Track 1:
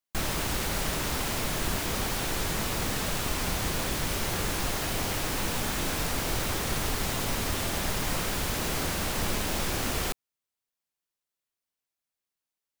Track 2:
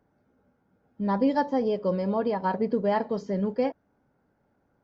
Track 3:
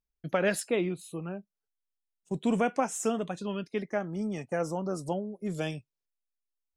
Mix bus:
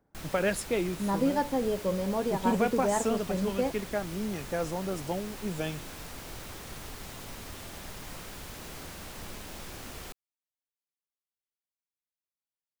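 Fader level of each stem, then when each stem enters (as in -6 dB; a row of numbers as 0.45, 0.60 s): -13.0, -3.5, -1.0 dB; 0.00, 0.00, 0.00 s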